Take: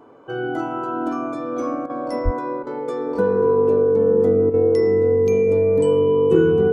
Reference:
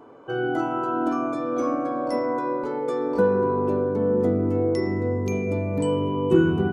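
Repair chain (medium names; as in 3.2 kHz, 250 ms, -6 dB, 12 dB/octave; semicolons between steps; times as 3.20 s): band-stop 450 Hz, Q 30; de-plosive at 2.24 s; interpolate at 1.86/2.63/4.50 s, 36 ms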